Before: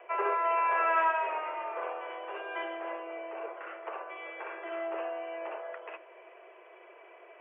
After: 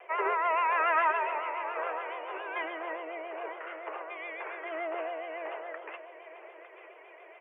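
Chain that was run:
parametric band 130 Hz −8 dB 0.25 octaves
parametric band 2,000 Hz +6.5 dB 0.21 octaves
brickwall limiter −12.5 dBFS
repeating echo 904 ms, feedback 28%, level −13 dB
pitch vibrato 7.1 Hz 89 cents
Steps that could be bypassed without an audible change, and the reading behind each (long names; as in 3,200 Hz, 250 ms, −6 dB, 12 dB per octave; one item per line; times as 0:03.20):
parametric band 130 Hz: nothing at its input below 320 Hz
brickwall limiter −12.5 dBFS: peak of its input −15.0 dBFS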